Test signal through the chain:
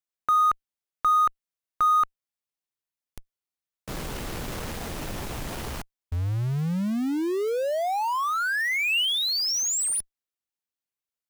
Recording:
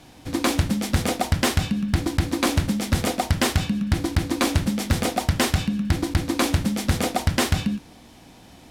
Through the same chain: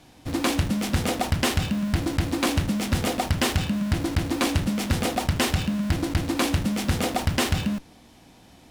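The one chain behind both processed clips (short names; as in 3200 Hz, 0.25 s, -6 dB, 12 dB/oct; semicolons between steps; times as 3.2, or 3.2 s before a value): dynamic EQ 2800 Hz, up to +4 dB, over -46 dBFS, Q 4.9; in parallel at -7.5 dB: Schmitt trigger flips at -32.5 dBFS; on the sum: gain -4 dB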